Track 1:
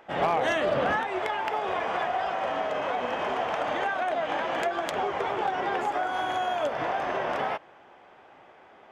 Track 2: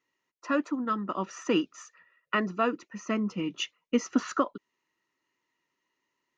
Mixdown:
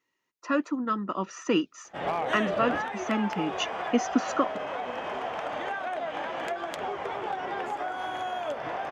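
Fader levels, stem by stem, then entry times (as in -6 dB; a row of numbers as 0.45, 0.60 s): -4.5, +1.0 dB; 1.85, 0.00 s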